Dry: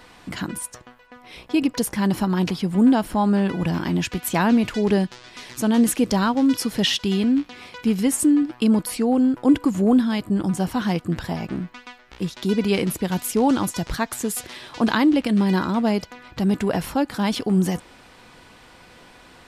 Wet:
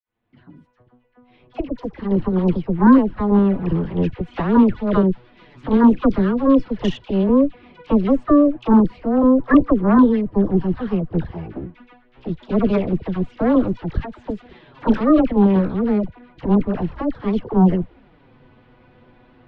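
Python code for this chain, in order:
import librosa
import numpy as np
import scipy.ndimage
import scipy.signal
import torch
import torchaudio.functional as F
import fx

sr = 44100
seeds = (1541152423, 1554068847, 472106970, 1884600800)

y = fx.fade_in_head(x, sr, length_s=2.45)
y = scipy.signal.sosfilt(scipy.signal.butter(4, 3400.0, 'lowpass', fs=sr, output='sos'), y)
y = fx.tilt_shelf(y, sr, db=7.5, hz=660.0)
y = fx.env_flanger(y, sr, rest_ms=8.7, full_db=-9.5)
y = fx.cheby_harmonics(y, sr, harmonics=(6,), levels_db=(-11,), full_scale_db=-2.5)
y = fx.dispersion(y, sr, late='lows', ms=61.0, hz=1000.0)
y = F.gain(torch.from_numpy(y), -1.5).numpy()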